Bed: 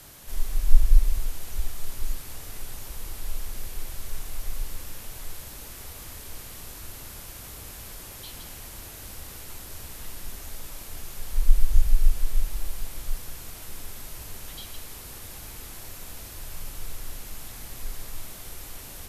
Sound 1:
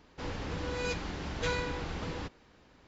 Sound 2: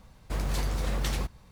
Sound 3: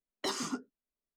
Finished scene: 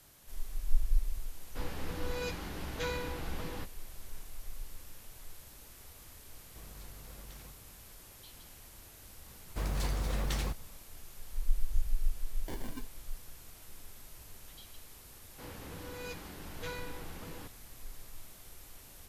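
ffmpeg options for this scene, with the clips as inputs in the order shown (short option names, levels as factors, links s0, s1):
-filter_complex "[1:a]asplit=2[s0][s1];[2:a]asplit=2[s2][s3];[0:a]volume=0.251[s4];[s0]asplit=2[s5][s6];[s6]adelay=16,volume=0.299[s7];[s5][s7]amix=inputs=2:normalize=0[s8];[s2]acompressor=threshold=0.0112:ratio=6:attack=4.8:release=38:knee=1:detection=peak[s9];[3:a]acrusher=samples=34:mix=1:aa=0.000001[s10];[s1]highpass=60[s11];[s8]atrim=end=2.87,asetpts=PTS-STARTPTS,volume=0.631,afade=t=in:d=0.004:c=hsin,afade=t=out:st=2.866:d=0.004:c=hsin,adelay=1370[s12];[s9]atrim=end=1.51,asetpts=PTS-STARTPTS,volume=0.282,afade=t=in:d=0.004:c=hsin,afade=t=out:st=1.506:d=0.004:c=hsin,adelay=276066S[s13];[s3]atrim=end=1.51,asetpts=PTS-STARTPTS,volume=0.631,afade=t=in:d=0.004:c=hsin,afade=t=out:st=1.506:d=0.004:c=hsin,adelay=9260[s14];[s10]atrim=end=1.16,asetpts=PTS-STARTPTS,volume=0.376,afade=t=in:d=0.004:c=hsin,afade=t=out:st=1.156:d=0.004:c=hsin,adelay=12240[s15];[s11]atrim=end=2.87,asetpts=PTS-STARTPTS,volume=0.355,afade=t=in:d=0.004:c=hsin,afade=t=out:st=2.866:d=0.004:c=hsin,adelay=15200[s16];[s4][s12][s13][s14][s15][s16]amix=inputs=6:normalize=0"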